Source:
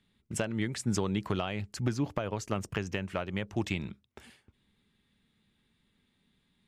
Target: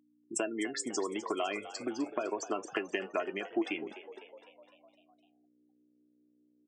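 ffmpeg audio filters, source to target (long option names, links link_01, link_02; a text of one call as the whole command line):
ffmpeg -i in.wav -filter_complex "[0:a]bandreject=frequency=3700:width=13,acrusher=bits=7:mix=0:aa=0.000001,afftfilt=real='re*gte(hypot(re,im),0.0178)':imag='im*gte(hypot(re,im),0.0178)':win_size=1024:overlap=0.75,flanger=delay=4.6:depth=5.5:regen=69:speed=0.31:shape=triangular,acompressor=threshold=-34dB:ratio=12,aeval=exprs='val(0)+0.000708*(sin(2*PI*60*n/s)+sin(2*PI*2*60*n/s)/2+sin(2*PI*3*60*n/s)/3+sin(2*PI*4*60*n/s)/4+sin(2*PI*5*60*n/s)/5)':channel_layout=same,highpass=frequency=270:width=0.5412,highpass=frequency=270:width=1.3066,aecho=1:1:2.9:0.55,asplit=7[link_01][link_02][link_03][link_04][link_05][link_06][link_07];[link_02]adelay=253,afreqshift=65,volume=-14dB[link_08];[link_03]adelay=506,afreqshift=130,volume=-18.7dB[link_09];[link_04]adelay=759,afreqshift=195,volume=-23.5dB[link_10];[link_05]adelay=1012,afreqshift=260,volume=-28.2dB[link_11];[link_06]adelay=1265,afreqshift=325,volume=-32.9dB[link_12];[link_07]adelay=1518,afreqshift=390,volume=-37.7dB[link_13];[link_01][link_08][link_09][link_10][link_11][link_12][link_13]amix=inputs=7:normalize=0,volume=7dB" out.wav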